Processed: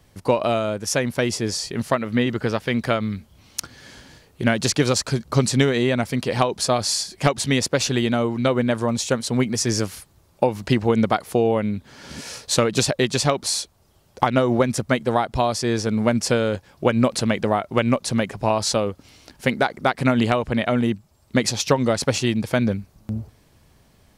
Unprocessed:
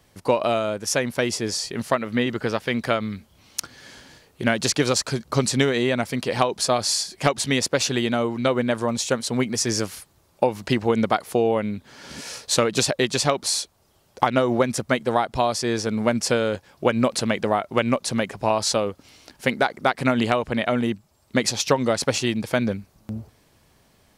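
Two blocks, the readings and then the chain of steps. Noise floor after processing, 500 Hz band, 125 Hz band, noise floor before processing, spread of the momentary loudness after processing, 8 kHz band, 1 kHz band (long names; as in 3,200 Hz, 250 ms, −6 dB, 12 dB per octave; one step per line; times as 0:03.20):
−57 dBFS, +1.0 dB, +5.0 dB, −61 dBFS, 7 LU, 0.0 dB, +0.5 dB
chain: low-shelf EQ 180 Hz +7.5 dB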